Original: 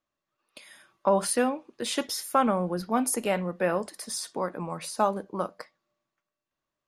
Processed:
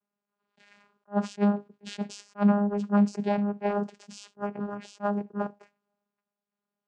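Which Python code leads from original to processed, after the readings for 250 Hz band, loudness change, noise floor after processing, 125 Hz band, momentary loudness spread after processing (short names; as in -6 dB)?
+5.0 dB, -0.5 dB, under -85 dBFS, +5.0 dB, 13 LU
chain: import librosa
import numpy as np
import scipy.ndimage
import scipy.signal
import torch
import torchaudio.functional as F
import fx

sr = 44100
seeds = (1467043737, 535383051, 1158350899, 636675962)

y = fx.vocoder(x, sr, bands=8, carrier='saw', carrier_hz=204.0)
y = fx.attack_slew(y, sr, db_per_s=430.0)
y = F.gain(torch.from_numpy(y), 2.5).numpy()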